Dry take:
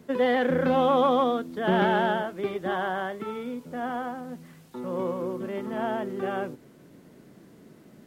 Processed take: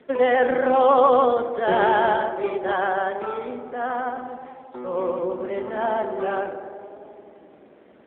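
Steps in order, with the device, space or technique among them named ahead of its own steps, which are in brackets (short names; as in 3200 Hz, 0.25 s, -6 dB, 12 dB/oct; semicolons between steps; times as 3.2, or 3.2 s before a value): 3.57–5.66 low shelf 99 Hz +5 dB; tape echo 88 ms, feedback 90%, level -9 dB, low-pass 1800 Hz; telephone (BPF 390–3600 Hz; gain +6.5 dB; AMR-NB 7.4 kbps 8000 Hz)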